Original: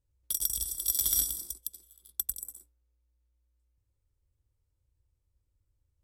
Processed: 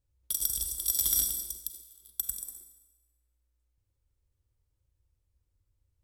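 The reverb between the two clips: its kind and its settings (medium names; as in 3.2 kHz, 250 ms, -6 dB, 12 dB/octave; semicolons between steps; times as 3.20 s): Schroeder reverb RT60 1.1 s, combs from 32 ms, DRR 8.5 dB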